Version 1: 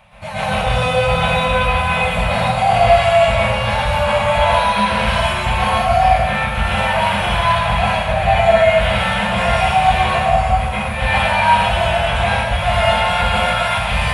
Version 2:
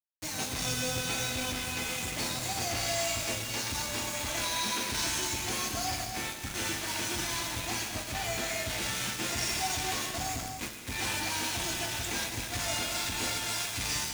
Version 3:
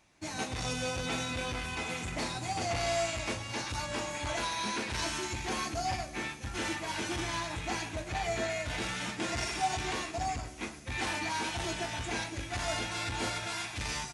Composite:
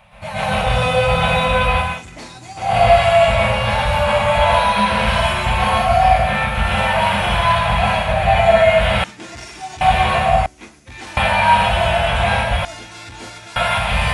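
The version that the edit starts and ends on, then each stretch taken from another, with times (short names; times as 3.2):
1
1.91–2.67 from 3, crossfade 0.24 s
9.04–9.81 from 3
10.46–11.17 from 3
12.65–13.56 from 3
not used: 2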